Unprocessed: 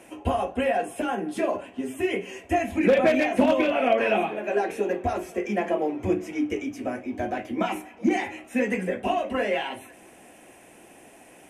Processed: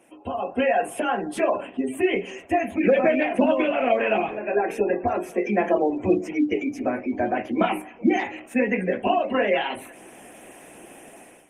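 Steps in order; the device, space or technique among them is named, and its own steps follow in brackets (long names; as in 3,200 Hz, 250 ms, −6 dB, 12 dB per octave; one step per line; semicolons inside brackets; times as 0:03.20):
0:00.64–0:01.60: dynamic equaliser 270 Hz, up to −6 dB, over −39 dBFS, Q 0.98
noise-suppressed video call (high-pass filter 130 Hz 12 dB per octave; gate on every frequency bin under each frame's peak −30 dB strong; automatic gain control gain up to 14 dB; level −7 dB; Opus 24 kbit/s 48,000 Hz)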